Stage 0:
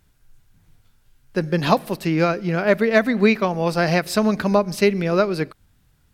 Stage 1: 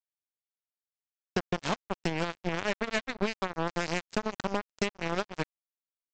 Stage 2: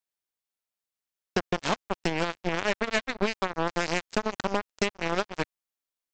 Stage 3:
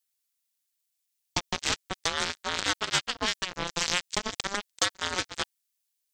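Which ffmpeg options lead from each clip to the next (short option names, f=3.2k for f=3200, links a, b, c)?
-af "acompressor=threshold=-26dB:ratio=10,aresample=16000,acrusher=bits=3:mix=0:aa=0.5,aresample=44100"
-af "equalizer=f=130:w=0.98:g=-4.5,volume=4dB"
-af "aexciter=amount=3.5:drive=7.5:freq=2.3k,aeval=exprs='val(0)*sin(2*PI*720*n/s+720*0.3/0.4*sin(2*PI*0.4*n/s))':c=same,volume=-3dB"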